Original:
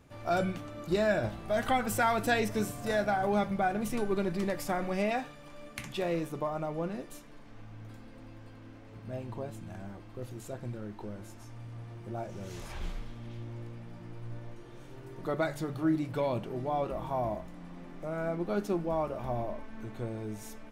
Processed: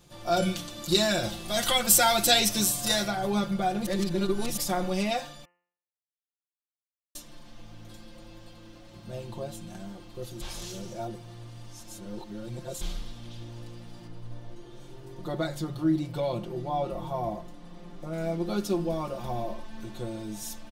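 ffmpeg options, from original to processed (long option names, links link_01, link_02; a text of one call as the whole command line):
ffmpeg -i in.wav -filter_complex "[0:a]asettb=1/sr,asplit=3[link_01][link_02][link_03];[link_01]atrim=end=0.424[link_04];[link_02]atrim=start=0.42:end=3.08,asetpts=PTS-STARTPTS,afade=type=in:duration=0.004:curve=qsin,afade=type=out:start_time=2.656:duration=0.004:curve=qsin,highshelf=frequency=2200:gain=8.5[link_05];[link_03]atrim=start=3.076[link_06];[link_04][link_05]acrossfade=duration=0.004:curve1=hsin:curve2=qsin[link_07];[link_07][link_06]acrossfade=duration=0.004:curve1=qsin:curve2=hsin,asettb=1/sr,asplit=3[link_08][link_09][link_10];[link_08]atrim=end=14.074[link_11];[link_09]atrim=start=14.07:end=18.13,asetpts=PTS-STARTPTS,afade=type=in:duration=0.004:curve=qsin,afade=type=out:start_time=4.056:duration=0.004:curve=qsin,highshelf=frequency=2100:gain=-7[link_12];[link_10]atrim=start=18.126[link_13];[link_11][link_12]acrossfade=duration=0.004:curve1=hsin:curve2=qsin[link_14];[link_14][link_13]acrossfade=duration=0.004:curve1=qsin:curve2=hsin,asplit=7[link_15][link_16][link_17][link_18][link_19][link_20][link_21];[link_15]atrim=end=3.862[link_22];[link_16]atrim=start=3.858:end=4.572,asetpts=PTS-STARTPTS,areverse[link_23];[link_17]atrim=start=4.568:end=5.45,asetpts=PTS-STARTPTS,afade=type=out:start_time=0.878:duration=0.004:curve=hsin[link_24];[link_18]atrim=start=5.45:end=7.15,asetpts=PTS-STARTPTS,volume=0[link_25];[link_19]atrim=start=7.15:end=10.412,asetpts=PTS-STARTPTS,afade=type=in:duration=0.004:curve=hsin[link_26];[link_20]atrim=start=10.408:end=12.812,asetpts=PTS-STARTPTS,areverse[link_27];[link_21]atrim=start=12.808[link_28];[link_22][link_23]acrossfade=duration=0.004:curve1=hsin:curve2=hsin[link_29];[link_24][link_25][link_26]concat=n=3:v=0:a=1[link_30];[link_29][link_30]acrossfade=duration=0.004:curve1=hsin:curve2=hsin[link_31];[link_31][link_27]acrossfade=duration=0.004:curve1=hsin:curve2=hsin[link_32];[link_32][link_28]acrossfade=duration=0.004:curve1=hsin:curve2=hsin,highshelf=frequency=2800:width_type=q:width=1.5:gain=8,aecho=1:1:5.7:0.83,bandreject=frequency=87.77:width_type=h:width=4,bandreject=frequency=175.54:width_type=h:width=4,bandreject=frequency=263.31:width_type=h:width=4,bandreject=frequency=351.08:width_type=h:width=4,bandreject=frequency=438.85:width_type=h:width=4,bandreject=frequency=526.62:width_type=h:width=4,bandreject=frequency=614.39:width_type=h:width=4,bandreject=frequency=702.16:width_type=h:width=4,bandreject=frequency=789.93:width_type=h:width=4,bandreject=frequency=877.7:width_type=h:width=4,bandreject=frequency=965.47:width_type=h:width=4,bandreject=frequency=1053.24:width_type=h:width=4,bandreject=frequency=1141.01:width_type=h:width=4,bandreject=frequency=1228.78:width_type=h:width=4,bandreject=frequency=1316.55:width_type=h:width=4,bandreject=frequency=1404.32:width_type=h:width=4,bandreject=frequency=1492.09:width_type=h:width=4,bandreject=frequency=1579.86:width_type=h:width=4,bandreject=frequency=1667.63:width_type=h:width=4,bandreject=frequency=1755.4:width_type=h:width=4,bandreject=frequency=1843.17:width_type=h:width=4,bandreject=frequency=1930.94:width_type=h:width=4,bandreject=frequency=2018.71:width_type=h:width=4,bandreject=frequency=2106.48:width_type=h:width=4,bandreject=frequency=2194.25:width_type=h:width=4,bandreject=frequency=2282.02:width_type=h:width=4,bandreject=frequency=2369.79:width_type=h:width=4,bandreject=frequency=2457.56:width_type=h:width=4,bandreject=frequency=2545.33:width_type=h:width=4,bandreject=frequency=2633.1:width_type=h:width=4,bandreject=frequency=2720.87:width_type=h:width=4,bandreject=frequency=2808.64:width_type=h:width=4,bandreject=frequency=2896.41:width_type=h:width=4,bandreject=frequency=2984.18:width_type=h:width=4" out.wav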